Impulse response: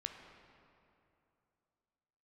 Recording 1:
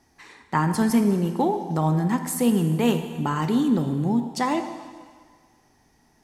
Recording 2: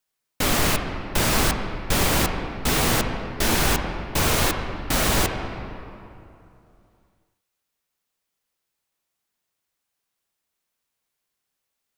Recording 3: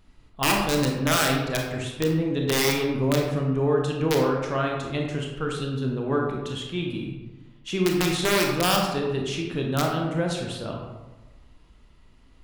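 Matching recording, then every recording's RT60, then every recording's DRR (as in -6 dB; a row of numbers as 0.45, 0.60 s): 2; 1.8, 2.8, 1.1 s; 7.0, 4.0, 0.5 dB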